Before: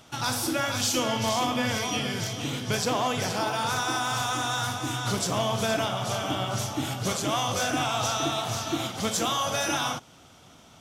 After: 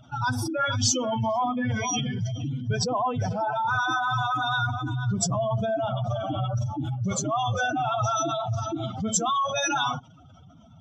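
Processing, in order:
expanding power law on the bin magnitudes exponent 3
parametric band 380 Hz −8.5 dB 2.2 octaves
level +6 dB

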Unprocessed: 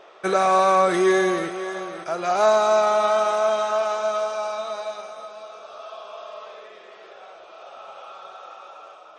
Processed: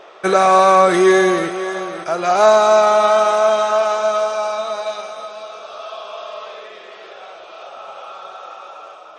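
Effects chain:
0:04.86–0:07.67: parametric band 3,400 Hz +3.5 dB 1.5 octaves
level +6.5 dB

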